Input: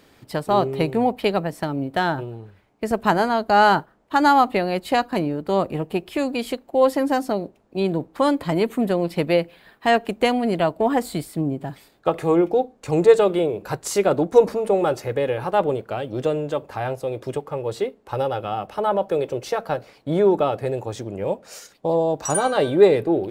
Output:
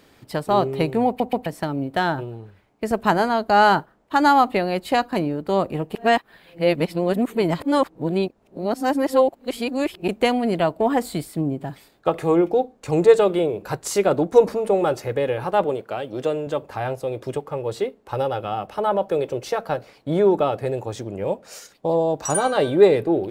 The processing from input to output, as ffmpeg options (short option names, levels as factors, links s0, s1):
-filter_complex "[0:a]asettb=1/sr,asplit=3[s0][s1][s2];[s0]atrim=end=15.644[s3];[s1]atrim=start=15.64:end=16.47,asetpts=PTS-STARTPTS,afade=t=in:d=0.004:c=qsin,afade=t=out:st=0.826:d=0.004:c=qsin,highpass=f=230:p=1[s4];[s2]atrim=start=16.466[s5];[s3][s4]acrossfade=d=0.004:c1=hsin:c2=qsin[s6];[s6][s5]acrossfade=d=0.004:c1=qsin:c2=hsin,asplit=6[s7][s8][s9][s10][s11][s12];[s7]atrim=end=1.202[s13];[s8]atrim=start=1.068:end=1.202[s14];[s9]atrim=start=1.068:end=1.202[s15];[s10]atrim=start=1.458:end=5.952[s16];[s11]atrim=start=5.948:end=10.082,asetpts=PTS-STARTPTS,areverse[s17];[s12]atrim=start=10.078[s18];[s13][s14]acrossfade=d=0.004:c1=hsin:c2=hsin[s19];[s19][s15]acrossfade=d=0.004:c1=hsin:c2=hsin[s20];[s20][s16]acrossfade=d=0.004:c1=hsin:c2=hsin[s21];[s21][s17]acrossfade=d=0.004:c1=hsin:c2=hsin[s22];[s22][s18]acrossfade=d=0.004:c1=hsin:c2=hsin"